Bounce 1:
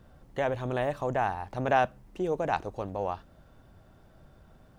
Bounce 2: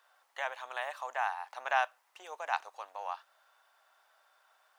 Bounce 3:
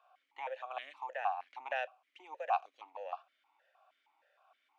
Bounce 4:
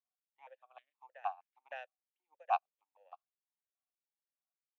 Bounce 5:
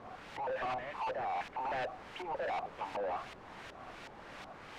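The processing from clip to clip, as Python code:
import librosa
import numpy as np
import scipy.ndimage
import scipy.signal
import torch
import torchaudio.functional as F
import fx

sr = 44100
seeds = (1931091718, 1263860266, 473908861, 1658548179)

y1 = scipy.signal.sosfilt(scipy.signal.butter(4, 870.0, 'highpass', fs=sr, output='sos'), x)
y2 = fx.dynamic_eq(y1, sr, hz=1800.0, q=1.8, threshold_db=-46.0, ratio=4.0, max_db=-5)
y2 = fx.vowel_held(y2, sr, hz=6.4)
y2 = y2 * librosa.db_to_amplitude(9.5)
y3 = fx.upward_expand(y2, sr, threshold_db=-54.0, expansion=2.5)
y3 = y3 * librosa.db_to_amplitude(1.5)
y4 = np.sign(y3) * np.sqrt(np.mean(np.square(y3)))
y4 = fx.filter_lfo_lowpass(y4, sr, shape='saw_up', hz=2.7, low_hz=810.0, high_hz=2700.0, q=0.77)
y4 = y4 * librosa.db_to_amplitude(11.0)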